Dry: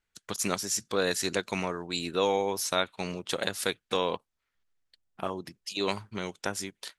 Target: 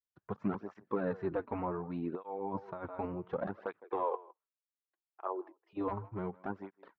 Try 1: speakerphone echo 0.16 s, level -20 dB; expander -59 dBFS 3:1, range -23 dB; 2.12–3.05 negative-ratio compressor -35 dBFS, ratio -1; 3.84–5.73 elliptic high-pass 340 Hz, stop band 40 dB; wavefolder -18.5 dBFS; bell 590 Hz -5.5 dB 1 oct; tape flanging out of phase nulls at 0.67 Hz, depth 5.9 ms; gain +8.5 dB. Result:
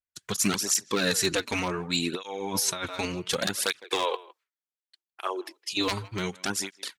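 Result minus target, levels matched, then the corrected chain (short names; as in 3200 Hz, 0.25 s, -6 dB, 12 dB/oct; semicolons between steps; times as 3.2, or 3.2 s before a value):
1000 Hz band -5.0 dB
speakerphone echo 0.16 s, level -20 dB; expander -59 dBFS 3:1, range -23 dB; 2.12–3.05 negative-ratio compressor -35 dBFS, ratio -1; 3.84–5.73 elliptic high-pass 340 Hz, stop band 40 dB; wavefolder -18.5 dBFS; ladder low-pass 1200 Hz, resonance 30%; bell 590 Hz -5.5 dB 1 oct; tape flanging out of phase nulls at 0.67 Hz, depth 5.9 ms; gain +8.5 dB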